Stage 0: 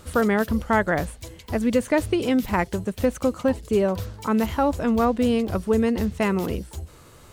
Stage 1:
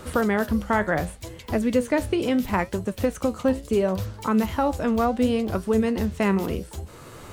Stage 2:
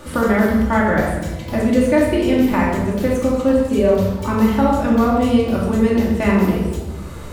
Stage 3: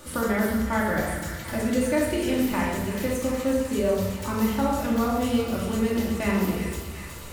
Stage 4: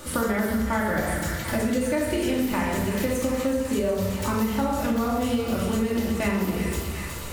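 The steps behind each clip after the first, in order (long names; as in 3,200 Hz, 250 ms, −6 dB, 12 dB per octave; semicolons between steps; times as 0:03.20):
flanger 0.71 Hz, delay 7.4 ms, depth 8.2 ms, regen +70%; multiband upward and downward compressor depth 40%; level +3 dB
rectangular room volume 670 cubic metres, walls mixed, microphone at 2.5 metres
high-shelf EQ 4,000 Hz +11 dB; delay with a high-pass on its return 370 ms, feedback 70%, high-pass 1,400 Hz, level −7.5 dB; level −9 dB
downward compressor, threshold −26 dBFS, peak gain reduction 8 dB; level +5 dB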